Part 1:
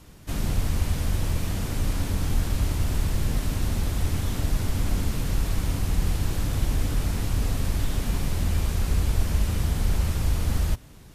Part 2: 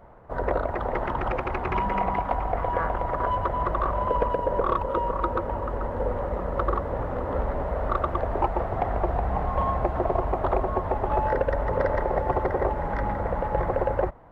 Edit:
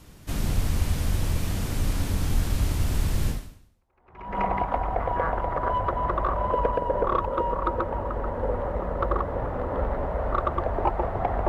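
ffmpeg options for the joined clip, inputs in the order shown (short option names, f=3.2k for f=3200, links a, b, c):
-filter_complex "[0:a]apad=whole_dur=11.48,atrim=end=11.48,atrim=end=4.39,asetpts=PTS-STARTPTS[a];[1:a]atrim=start=0.86:end=9.05,asetpts=PTS-STARTPTS[b];[a][b]acrossfade=d=1.1:c1=exp:c2=exp"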